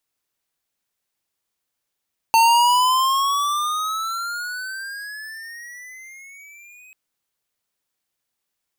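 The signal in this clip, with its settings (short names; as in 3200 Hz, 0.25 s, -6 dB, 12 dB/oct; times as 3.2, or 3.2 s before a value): gliding synth tone square, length 4.59 s, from 899 Hz, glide +18 st, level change -33.5 dB, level -13 dB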